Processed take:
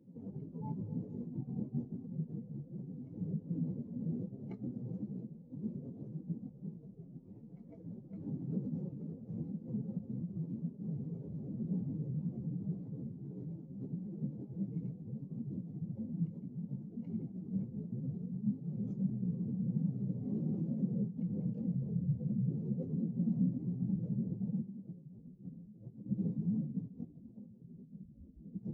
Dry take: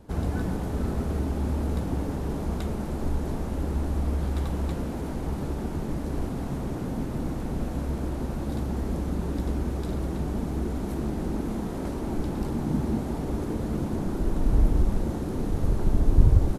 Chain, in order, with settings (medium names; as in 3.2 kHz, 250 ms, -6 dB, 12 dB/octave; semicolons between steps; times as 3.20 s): spectral contrast enhancement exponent 2.2; high-pass 340 Hz 24 dB/octave; speed mistake 78 rpm record played at 45 rpm; trim +5.5 dB